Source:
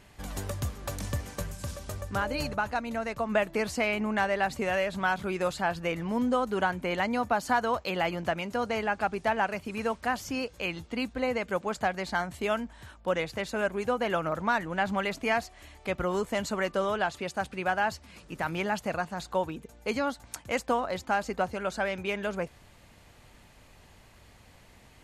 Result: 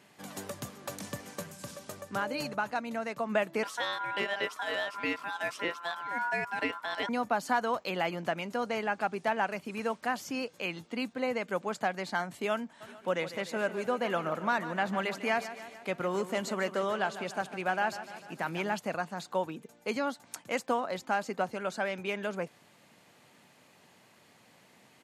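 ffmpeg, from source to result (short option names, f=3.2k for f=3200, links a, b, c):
-filter_complex "[0:a]asettb=1/sr,asplit=3[a][b][c];[a]atrim=end=3.634[d];[b]atrim=start=3.63:end=7.09,asetpts=PTS-STARTPTS,afade=t=in:d=0.004:c=qsin,afade=t=out:st=3.456:d=0.004:c=qsin,aeval=exprs='val(0)*sin(2*PI*1200*n/s)':c=same[e];[c]atrim=start=7.086[f];[d][e]acrossfade=d=0.004:c1=hsin:c2=qsin[g];[g][f]acrossfade=d=0.004:c1=qsin:c2=hsin,asplit=3[h][i][j];[h]afade=t=out:st=12.8:d=0.02[k];[i]aecho=1:1:149|298|447|596|745|894:0.224|0.132|0.0779|0.046|0.0271|0.016,afade=t=in:st=12.8:d=0.02,afade=t=out:st=18.74:d=0.02[l];[j]afade=t=in:st=18.74:d=0.02[m];[k][l][m]amix=inputs=3:normalize=0,highpass=f=150:w=0.5412,highpass=f=150:w=1.3066,volume=-2.5dB"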